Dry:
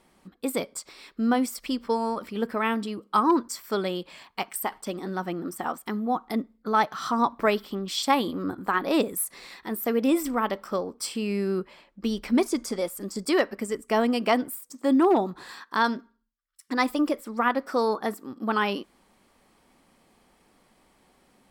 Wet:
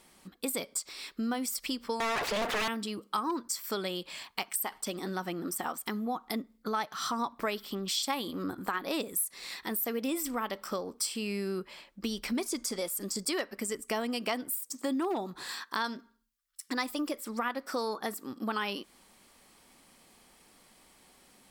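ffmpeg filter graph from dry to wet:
ffmpeg -i in.wav -filter_complex "[0:a]asettb=1/sr,asplit=3[link_01][link_02][link_03];[link_01]atrim=end=2.004[link_04];[link_02]atrim=start=2:end=2.68,asetpts=PTS-STARTPTS,afade=type=in:duration=0.004:curve=qsin,afade=type=out:start_time=0.676:duration=0.004:curve=qsin,aeval=exprs='abs(val(0))':channel_layout=same,asplit=2[link_05][link_06];[link_06]highpass=frequency=720:poles=1,volume=36dB,asoftclip=type=tanh:threshold=-14dB[link_07];[link_05][link_07]amix=inputs=2:normalize=0,lowpass=frequency=1400:poles=1,volume=-6dB[link_08];[link_03]atrim=start=2.676[link_09];[link_04][link_08]acrossfade=duration=0.004:curve1=hsin:curve2=qsin[link_10];[link_10][link_09]acrossfade=duration=0.004:curve1=qsin:curve2=hsin,highshelf=frequency=2400:gain=11,acompressor=threshold=-30dB:ratio=3,volume=-2dB" out.wav

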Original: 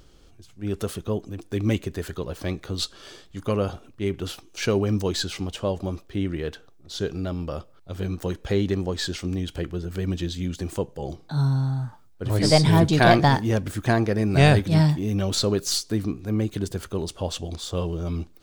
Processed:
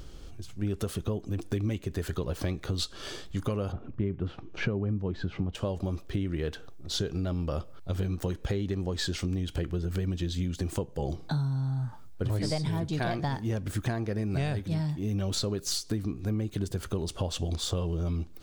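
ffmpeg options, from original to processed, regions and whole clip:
ffmpeg -i in.wav -filter_complex "[0:a]asettb=1/sr,asplit=3[link_01][link_02][link_03];[link_01]atrim=end=3.724[link_04];[link_02]atrim=start=3.72:end=5.55,asetpts=PTS-STARTPTS,afade=type=in:duration=0.004:curve=qsin,afade=type=out:start_time=1.826:duration=0.004:curve=qsin,lowpass=1800,equalizer=frequency=150:width_type=o:width=1.8:gain=6.5[link_05];[link_03]atrim=start=5.546[link_06];[link_04][link_05]acrossfade=duration=0.004:curve1=hsin:curve2=qsin[link_07];[link_07][link_06]acrossfade=duration=0.004:curve1=qsin:curve2=hsin,lowshelf=frequency=150:gain=6,acompressor=threshold=-31dB:ratio=12,volume=4dB" out.wav

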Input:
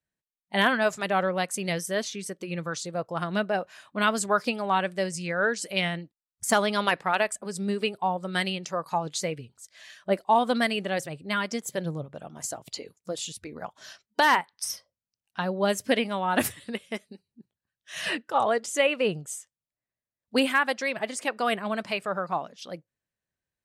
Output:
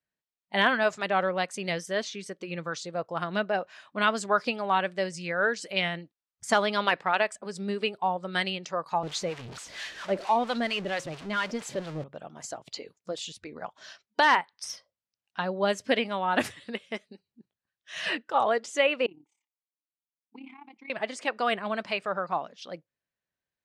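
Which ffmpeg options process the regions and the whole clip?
ffmpeg -i in.wav -filter_complex "[0:a]asettb=1/sr,asplit=3[link_01][link_02][link_03];[link_01]atrim=end=9.034[link_04];[link_02]atrim=start=9.03:end=12.04,asetpts=PTS-STARTPTS,afade=type=in:duration=0.004:curve=qsin,afade=type=out:start_time=3.006:duration=0.004:curve=qsin,aeval=exprs='val(0)+0.5*0.0299*sgn(val(0))':channel_layout=same,acrossover=split=690[link_05][link_06];[link_05]aeval=exprs='val(0)*(1-0.7/2+0.7/2*cos(2*PI*4.4*n/s))':channel_layout=same[link_07];[link_06]aeval=exprs='val(0)*(1-0.7/2-0.7/2*cos(2*PI*4.4*n/s))':channel_layout=same[link_08];[link_07][link_08]amix=inputs=2:normalize=0[link_09];[link_03]atrim=start=12.036[link_10];[link_04][link_09]acrossfade=duration=0.004:curve1=hsin:curve2=qsin[link_11];[link_11][link_10]acrossfade=duration=0.004:curve1=qsin:curve2=hsin,asettb=1/sr,asplit=3[link_12][link_13][link_14];[link_12]atrim=end=19.064[link_15];[link_13]atrim=start=19.06:end=20.9,asetpts=PTS-STARTPTS,afade=type=in:duration=0.004:curve=qsin,afade=type=out:start_time=1.836:duration=0.004:curve=qsin,acompressor=threshold=-25dB:ratio=6:attack=3.2:release=140:knee=1:detection=peak,asplit=3[link_16][link_17][link_18];[link_16]bandpass=frequency=300:width_type=q:width=8,volume=0dB[link_19];[link_17]bandpass=frequency=870:width_type=q:width=8,volume=-6dB[link_20];[link_18]bandpass=frequency=2240:width_type=q:width=8,volume=-9dB[link_21];[link_19][link_20][link_21]amix=inputs=3:normalize=0,tremolo=f=34:d=0.75[link_22];[link_14]atrim=start=20.896[link_23];[link_15][link_22]acrossfade=duration=0.004:curve1=hsin:curve2=qsin[link_24];[link_24][link_23]acrossfade=duration=0.004:curve1=qsin:curve2=hsin,lowpass=5300,lowshelf=frequency=200:gain=-8" out.wav

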